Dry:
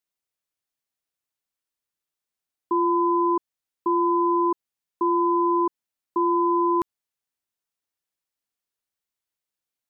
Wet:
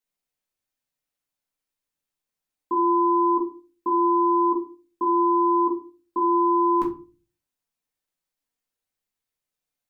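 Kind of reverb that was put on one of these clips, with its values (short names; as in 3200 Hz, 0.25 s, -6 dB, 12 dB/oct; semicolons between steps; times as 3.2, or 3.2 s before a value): shoebox room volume 170 m³, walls furnished, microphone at 2.1 m; gain -3 dB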